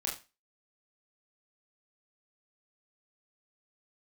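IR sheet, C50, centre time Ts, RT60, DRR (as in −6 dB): 8.5 dB, 28 ms, 0.30 s, −3.0 dB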